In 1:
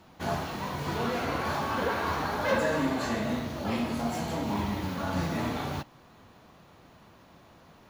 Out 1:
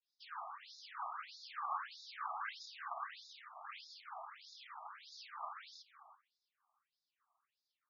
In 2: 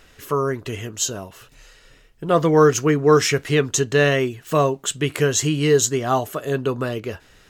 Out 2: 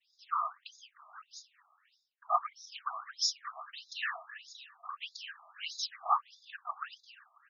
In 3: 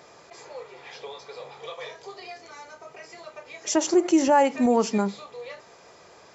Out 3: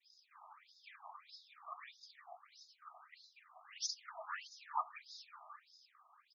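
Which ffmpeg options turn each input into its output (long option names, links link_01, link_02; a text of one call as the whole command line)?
ffmpeg -i in.wav -filter_complex "[0:a]equalizer=frequency=5000:width_type=o:width=0.22:gain=12.5,afftfilt=real='hypot(re,im)*cos(2*PI*random(0))':imag='hypot(re,im)*sin(2*PI*random(1))':win_size=512:overlap=0.75,asplit=2[link_01][link_02];[link_02]adelay=334,lowpass=frequency=4900:poles=1,volume=-14dB,asplit=2[link_03][link_04];[link_04]adelay=334,lowpass=frequency=4900:poles=1,volume=0.22[link_05];[link_01][link_03][link_05]amix=inputs=3:normalize=0,agate=range=-33dB:threshold=-50dB:ratio=3:detection=peak,equalizer=frequency=1200:width_type=o:width=0.29:gain=9,afftfilt=real='re*between(b*sr/1024,890*pow(5000/890,0.5+0.5*sin(2*PI*1.6*pts/sr))/1.41,890*pow(5000/890,0.5+0.5*sin(2*PI*1.6*pts/sr))*1.41)':imag='im*between(b*sr/1024,890*pow(5000/890,0.5+0.5*sin(2*PI*1.6*pts/sr))/1.41,890*pow(5000/890,0.5+0.5*sin(2*PI*1.6*pts/sr))*1.41)':win_size=1024:overlap=0.75,volume=-5dB" out.wav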